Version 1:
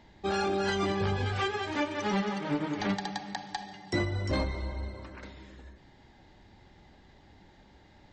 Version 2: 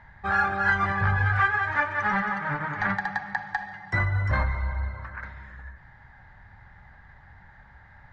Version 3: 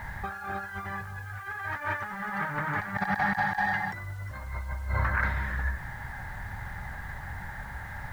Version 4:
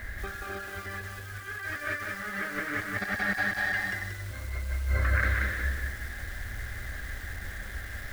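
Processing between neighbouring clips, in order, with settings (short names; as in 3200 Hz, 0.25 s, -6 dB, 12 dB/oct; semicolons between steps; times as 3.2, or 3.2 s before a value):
EQ curve 130 Hz 0 dB, 330 Hz -21 dB, 820 Hz -2 dB, 1700 Hz +8 dB, 2800 Hz -14 dB, 4500 Hz -17 dB, 9600 Hz -21 dB; gain +7.5 dB
negative-ratio compressor -37 dBFS, ratio -1; bit-crush 10-bit; gain +4 dB
fixed phaser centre 370 Hz, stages 4; lo-fi delay 0.182 s, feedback 35%, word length 8-bit, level -3 dB; gain +3.5 dB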